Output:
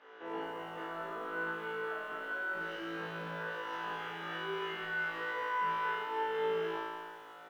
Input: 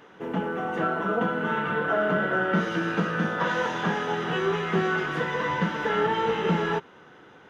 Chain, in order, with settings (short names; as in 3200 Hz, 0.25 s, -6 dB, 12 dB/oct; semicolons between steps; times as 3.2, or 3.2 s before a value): HPF 520 Hz 12 dB/oct; limiter -26 dBFS, peak gain reduction 11 dB; compressor, threshold -34 dBFS, peak gain reduction 4.5 dB; soft clip -29 dBFS, distortion -24 dB; air absorption 160 m; doubler 43 ms -4.5 dB; flutter echo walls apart 3.1 m, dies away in 1.5 s; lo-fi delay 0.212 s, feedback 35%, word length 8-bit, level -12.5 dB; gain -8 dB